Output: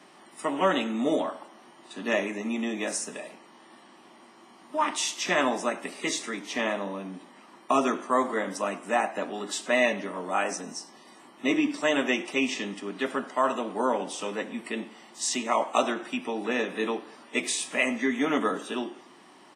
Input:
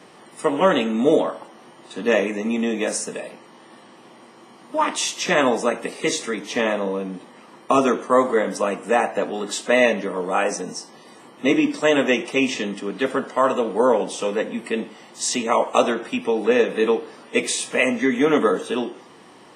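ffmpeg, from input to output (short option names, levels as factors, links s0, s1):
-af "highpass=200,equalizer=f=480:t=o:w=0.22:g=-13,aecho=1:1:102|204|306:0.0668|0.0354|0.0188,volume=0.562"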